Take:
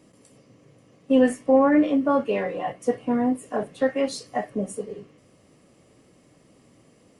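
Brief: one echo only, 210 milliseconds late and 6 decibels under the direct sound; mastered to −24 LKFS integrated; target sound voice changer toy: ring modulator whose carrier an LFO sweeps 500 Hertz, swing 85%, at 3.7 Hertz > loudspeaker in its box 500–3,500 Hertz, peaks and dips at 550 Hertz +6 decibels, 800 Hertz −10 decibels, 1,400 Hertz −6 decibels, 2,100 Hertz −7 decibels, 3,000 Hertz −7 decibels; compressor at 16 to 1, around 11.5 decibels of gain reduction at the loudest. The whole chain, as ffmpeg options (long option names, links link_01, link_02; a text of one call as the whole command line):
ffmpeg -i in.wav -af "acompressor=threshold=-24dB:ratio=16,aecho=1:1:210:0.501,aeval=exprs='val(0)*sin(2*PI*500*n/s+500*0.85/3.7*sin(2*PI*3.7*n/s))':channel_layout=same,highpass=500,equalizer=frequency=550:width_type=q:width=4:gain=6,equalizer=frequency=800:width_type=q:width=4:gain=-10,equalizer=frequency=1400:width_type=q:width=4:gain=-6,equalizer=frequency=2100:width_type=q:width=4:gain=-7,equalizer=frequency=3000:width_type=q:width=4:gain=-7,lowpass=frequency=3500:width=0.5412,lowpass=frequency=3500:width=1.3066,volume=13dB" out.wav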